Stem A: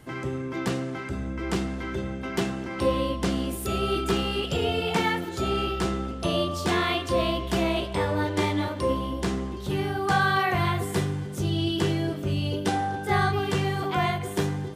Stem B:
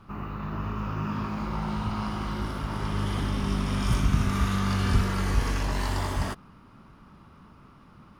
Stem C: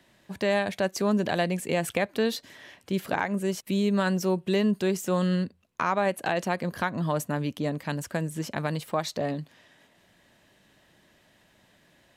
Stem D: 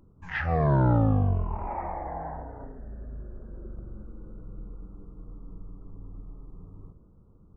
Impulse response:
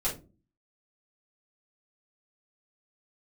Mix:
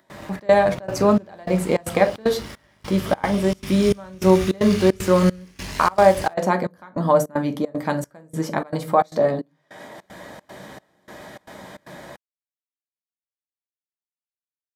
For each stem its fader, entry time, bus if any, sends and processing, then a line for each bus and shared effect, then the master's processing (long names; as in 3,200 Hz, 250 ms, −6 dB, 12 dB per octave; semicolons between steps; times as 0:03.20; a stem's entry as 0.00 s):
muted
−3.0 dB, 0.00 s, no send, high shelf with overshoot 1,700 Hz +9.5 dB, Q 1.5; dead-zone distortion −37.5 dBFS
+0.5 dB, 0.00 s, send −9.5 dB, parametric band 740 Hz +8.5 dB 2.5 octaves; notch filter 2,700 Hz, Q 10; upward compression, threshold −29 dBFS
−14.0 dB, 0.00 s, no send, no processing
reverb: on, RT60 0.35 s, pre-delay 3 ms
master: high-pass filter 59 Hz; parametric band 2,900 Hz −4 dB 0.77 octaves; gate pattern ".xxx.xxx.xxx.." 153 BPM −24 dB